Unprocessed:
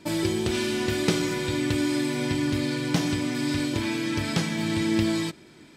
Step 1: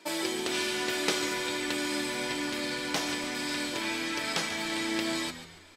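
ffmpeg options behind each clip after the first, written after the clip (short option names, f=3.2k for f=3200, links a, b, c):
-filter_complex "[0:a]highpass=510,asplit=5[a][b][c][d][e];[b]adelay=142,afreqshift=-80,volume=-12dB[f];[c]adelay=284,afreqshift=-160,volume=-19.5dB[g];[d]adelay=426,afreqshift=-240,volume=-27.1dB[h];[e]adelay=568,afreqshift=-320,volume=-34.6dB[i];[a][f][g][h][i]amix=inputs=5:normalize=0"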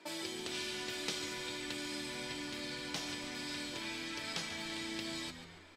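-filter_complex "[0:a]highshelf=f=6k:g=-11,acrossover=split=160|3000[a][b][c];[b]acompressor=threshold=-45dB:ratio=2.5[d];[a][d][c]amix=inputs=3:normalize=0,volume=-2.5dB"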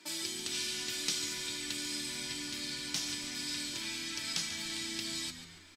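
-af "firequalizer=gain_entry='entry(290,0);entry(470,-9);entry(1400,-1);entry(5700,9)':delay=0.05:min_phase=1"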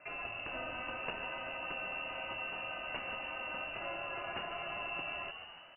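-af "lowpass=f=2.6k:t=q:w=0.5098,lowpass=f=2.6k:t=q:w=0.6013,lowpass=f=2.6k:t=q:w=0.9,lowpass=f=2.6k:t=q:w=2.563,afreqshift=-3000,volume=3.5dB"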